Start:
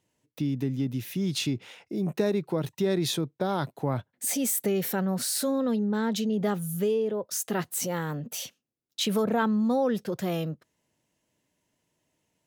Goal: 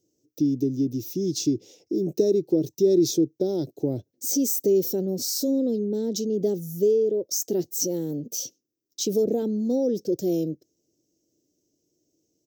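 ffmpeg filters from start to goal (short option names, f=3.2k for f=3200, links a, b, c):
-af "firequalizer=gain_entry='entry(220,0);entry(320,14);entry(1100,-28);entry(5700,12);entry(10000,-11);entry(15000,10)':delay=0.05:min_phase=1,volume=-2dB"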